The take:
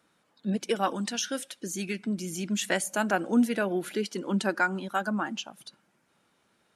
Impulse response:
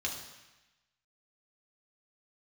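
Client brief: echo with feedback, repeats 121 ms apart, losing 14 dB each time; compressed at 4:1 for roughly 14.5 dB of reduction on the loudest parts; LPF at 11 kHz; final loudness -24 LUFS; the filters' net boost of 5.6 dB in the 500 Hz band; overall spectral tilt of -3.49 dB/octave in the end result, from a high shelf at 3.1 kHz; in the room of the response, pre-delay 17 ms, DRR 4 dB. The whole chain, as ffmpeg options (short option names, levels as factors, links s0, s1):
-filter_complex "[0:a]lowpass=11000,equalizer=f=500:t=o:g=7,highshelf=f=3100:g=3,acompressor=threshold=0.02:ratio=4,aecho=1:1:121|242:0.2|0.0399,asplit=2[s0][s1];[1:a]atrim=start_sample=2205,adelay=17[s2];[s1][s2]afir=irnorm=-1:irlink=0,volume=0.422[s3];[s0][s3]amix=inputs=2:normalize=0,volume=3.76"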